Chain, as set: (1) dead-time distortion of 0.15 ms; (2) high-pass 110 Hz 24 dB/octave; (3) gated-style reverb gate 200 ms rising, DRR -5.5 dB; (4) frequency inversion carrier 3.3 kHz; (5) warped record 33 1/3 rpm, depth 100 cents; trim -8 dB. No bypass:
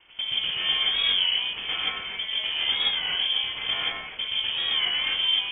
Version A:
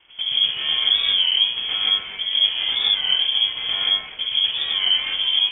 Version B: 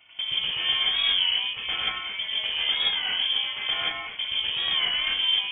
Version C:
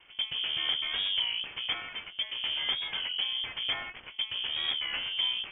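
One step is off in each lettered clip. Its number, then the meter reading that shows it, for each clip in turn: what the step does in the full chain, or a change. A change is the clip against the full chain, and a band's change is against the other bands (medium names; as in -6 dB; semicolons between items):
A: 2, momentary loudness spread change -3 LU; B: 1, distortion -17 dB; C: 3, loudness change -6.5 LU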